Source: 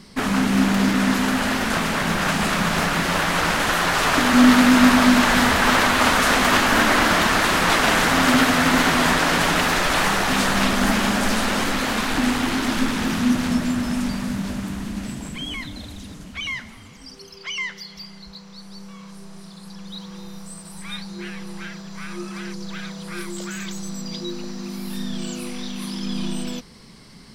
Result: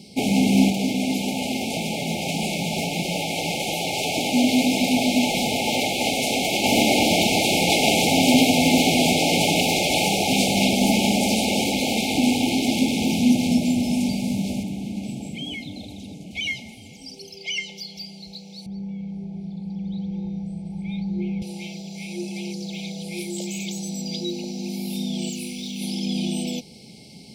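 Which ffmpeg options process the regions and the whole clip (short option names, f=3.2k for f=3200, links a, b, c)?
-filter_complex "[0:a]asettb=1/sr,asplit=3[a][b][c];[a]atrim=end=0.704[d];[b]atrim=start=0.7:end=6.64,asetpts=PTS-STARTPTS,afade=t=in:d=0.004:c=qsin,afade=t=out:st=5.936:d=0.004:c=qsin,bandreject=f=50:t=h:w=6,bandreject=f=100:t=h:w=6,bandreject=f=150:t=h:w=6,bandreject=f=200:t=h:w=6,bandreject=f=250:t=h:w=6,bandreject=f=300:t=h:w=6,bandreject=f=350:t=h:w=6,flanger=delay=5.2:depth=3.4:regen=-45:speed=1.7:shape=triangular[e];[c]atrim=start=6.636[f];[d][e]acrossfade=d=0.004:c1=hsin:c2=qsin[g];[g][f]acrossfade=d=0.004:c1=qsin:c2=hsin,asettb=1/sr,asplit=3[h][i][j];[h]atrim=end=14.634[k];[i]atrim=start=14.63:end=16.31,asetpts=PTS-STARTPTS,afade=t=in:d=0.004:c=qsin,afade=t=out:st=1.676:d=0.004:c=qsin,highpass=76,highshelf=f=3.7k:g=-8.5,acrossover=split=170|3000[l][m][n];[m]acompressor=threshold=-35dB:ratio=1.5:attack=3.2:release=140:knee=2.83:detection=peak[o];[l][o][n]amix=inputs=3:normalize=0[p];[j]atrim=start=16.306[q];[k][p]acrossfade=d=0.004:c1=hsin:c2=qsin[r];[r][q]acrossfade=d=0.004:c1=qsin:c2=hsin,asettb=1/sr,asplit=3[s][t][u];[s]atrim=end=18.664[v];[t]atrim=start=18.66:end=21.42,asetpts=PTS-STARTPTS,afade=t=in:d=0.004:c=qsin,afade=t=out:st=2.756:d=0.004:c=qsin,lowpass=f=1.1k:p=1,aemphasis=mode=reproduction:type=bsi,aecho=1:1:0.9:0.33,atrim=end_sample=121716[w];[u]atrim=start=21.416[x];[v][w]acrossfade=d=0.004:c1=hsin:c2=qsin[y];[y][x]acrossfade=d=0.004:c1=qsin:c2=hsin,asettb=1/sr,asplit=3[z][aa][ab];[z]atrim=end=25.294[ac];[aa]atrim=start=25.29:end=25.81,asetpts=PTS-STARTPTS,afade=t=in:d=0.004:c=qsin,afade=t=out:st=0.516:d=0.004:c=qsin,equalizer=f=640:t=o:w=1.3:g=-13.5,asoftclip=type=hard:threshold=-26dB,acrusher=bits=8:mix=0:aa=0.5[ad];[ab]atrim=start=25.806[ae];[ac][ad]acrossfade=d=0.004:c1=hsin:c2=qsin[af];[af][ae]acrossfade=d=0.004:c1=qsin:c2=hsin,highpass=100,afftfilt=real='re*(1-between(b*sr/4096,880,2100))':imag='im*(1-between(b*sr/4096,880,2100))':win_size=4096:overlap=0.75,volume=2dB"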